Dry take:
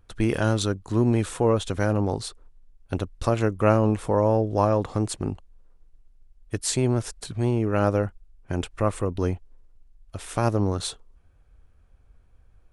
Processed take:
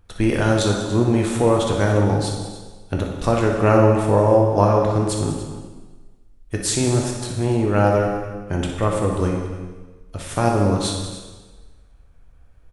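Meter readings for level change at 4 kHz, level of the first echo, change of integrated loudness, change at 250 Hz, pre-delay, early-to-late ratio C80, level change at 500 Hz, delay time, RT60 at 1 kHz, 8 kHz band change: +6.0 dB, -9.5 dB, +5.5 dB, +5.0 dB, 6 ms, 4.5 dB, +6.0 dB, 60 ms, 1.3 s, +6.0 dB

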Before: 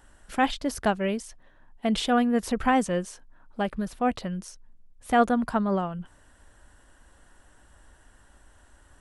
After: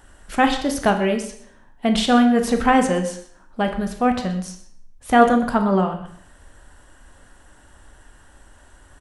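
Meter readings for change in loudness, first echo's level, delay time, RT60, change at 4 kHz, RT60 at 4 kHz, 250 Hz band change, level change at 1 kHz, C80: +7.0 dB, -16.0 dB, 0.123 s, 0.60 s, +7.0 dB, 0.55 s, +7.0 dB, +7.0 dB, 11.5 dB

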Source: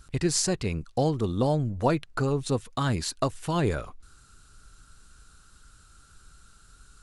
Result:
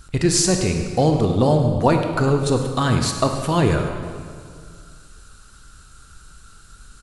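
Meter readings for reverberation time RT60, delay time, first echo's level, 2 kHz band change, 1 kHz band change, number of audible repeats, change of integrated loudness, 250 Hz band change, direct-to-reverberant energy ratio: 2.1 s, 0.102 s, -13.5 dB, +8.5 dB, +8.5 dB, 1, +8.5 dB, +8.5 dB, 4.0 dB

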